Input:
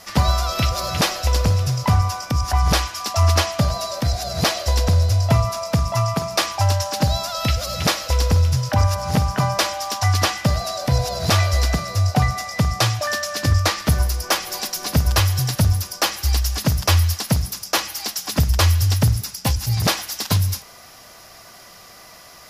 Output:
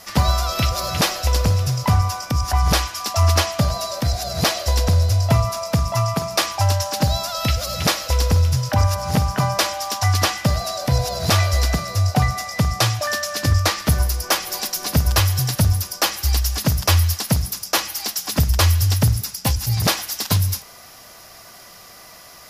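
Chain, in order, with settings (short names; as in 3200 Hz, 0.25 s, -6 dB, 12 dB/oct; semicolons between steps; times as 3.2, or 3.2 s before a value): high shelf 11000 Hz +5.5 dB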